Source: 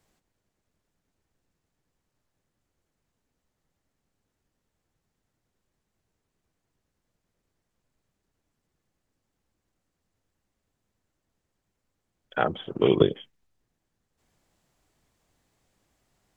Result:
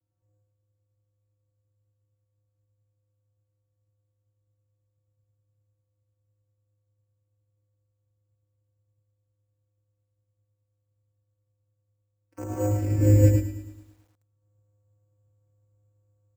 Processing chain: local Wiener filter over 15 samples; formant shift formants -6 st; vocoder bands 8, square 103 Hz; on a send: delay 105 ms -5 dB; on the sum: gated-style reverb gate 260 ms rising, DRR -7 dB; careless resampling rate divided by 6×, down filtered, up hold; bit-crushed delay 108 ms, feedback 55%, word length 8-bit, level -12 dB; trim -8 dB

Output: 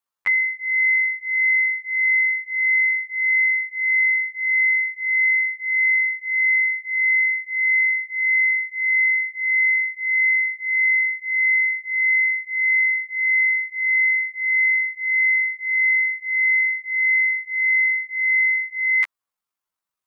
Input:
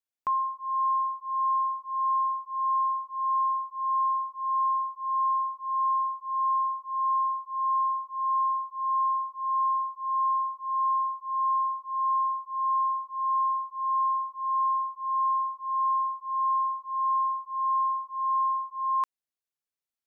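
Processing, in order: rotating-head pitch shifter +11.5 st; peaking EQ 1.1 kHz +11 dB 0.92 oct; trim +6 dB

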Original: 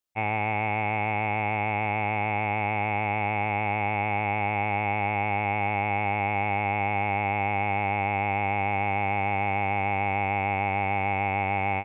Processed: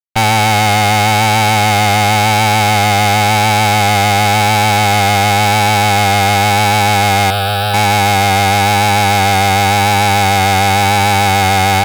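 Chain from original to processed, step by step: fuzz box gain 49 dB, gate -51 dBFS; 7.30–7.74 s: static phaser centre 1.4 kHz, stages 8; vibrato 0.93 Hz 34 cents; trim +3 dB

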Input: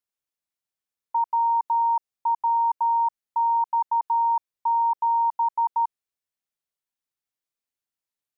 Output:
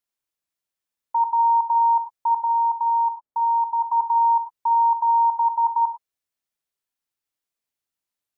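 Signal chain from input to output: 2.40–3.92 s: low-pass 1 kHz 12 dB/octave; gated-style reverb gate 130 ms flat, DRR 8 dB; trim +2 dB

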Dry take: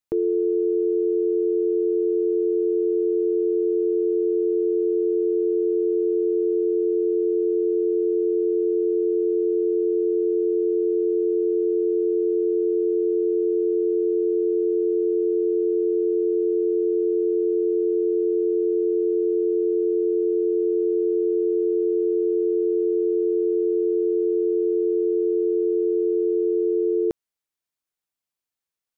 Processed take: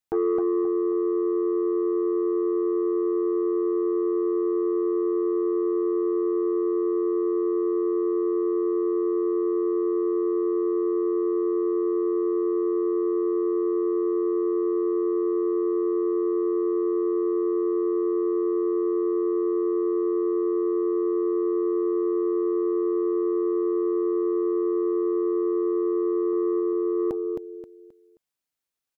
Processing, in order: 26.33–26.73 s: bass shelf 110 Hz -5 dB; feedback delay 265 ms, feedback 30%, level -5 dB; transformer saturation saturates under 360 Hz

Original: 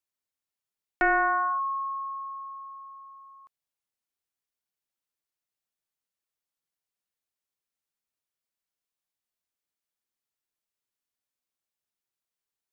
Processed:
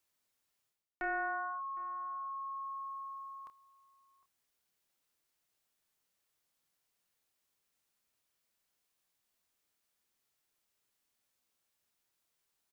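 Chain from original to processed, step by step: reverse; compression 16:1, threshold -43 dBFS, peak gain reduction 23 dB; reverse; doubling 28 ms -8.5 dB; echo from a far wall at 130 m, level -21 dB; trim +7.5 dB

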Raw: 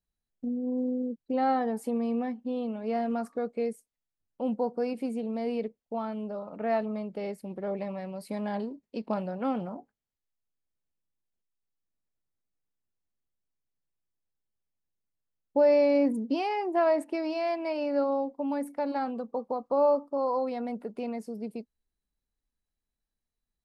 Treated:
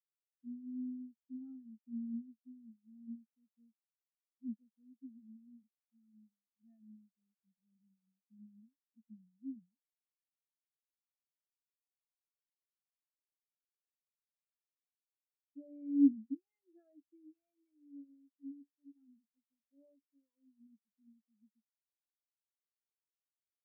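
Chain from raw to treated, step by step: high-order bell 670 Hz -14.5 dB; spectral contrast expander 4:1; trim +1.5 dB

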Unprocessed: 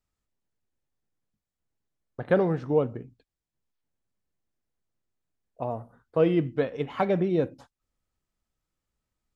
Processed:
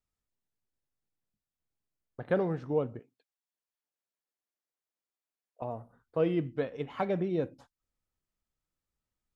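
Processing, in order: 2.99–5.62 s: high-pass 480 Hz 12 dB/octave; trim -6 dB

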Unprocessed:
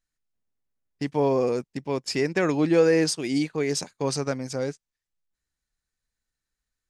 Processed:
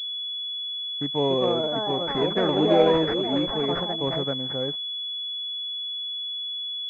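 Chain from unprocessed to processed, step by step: ever faster or slower copies 498 ms, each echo +4 st, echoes 3; class-D stage that switches slowly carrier 3.4 kHz; trim -1.5 dB

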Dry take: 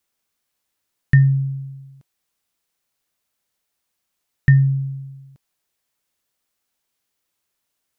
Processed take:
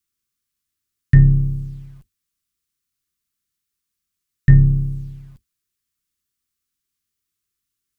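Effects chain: octave divider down 2 oct, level -4 dB; elliptic band-stop 410–1100 Hz; tone controls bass +6 dB, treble +4 dB; in parallel at -5.5 dB: word length cut 8-bit, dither none; on the sum: trim -7 dB

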